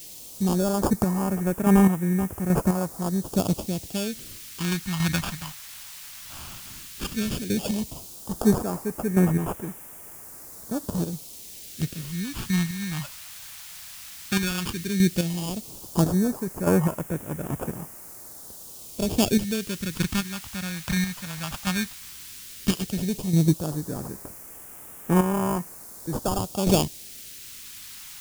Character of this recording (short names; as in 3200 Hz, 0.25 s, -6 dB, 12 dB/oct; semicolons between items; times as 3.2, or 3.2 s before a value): aliases and images of a low sample rate 2000 Hz, jitter 0%; chopped level 1.2 Hz, depth 60%, duty 25%; a quantiser's noise floor 8-bit, dither triangular; phasing stages 2, 0.13 Hz, lowest notch 380–3900 Hz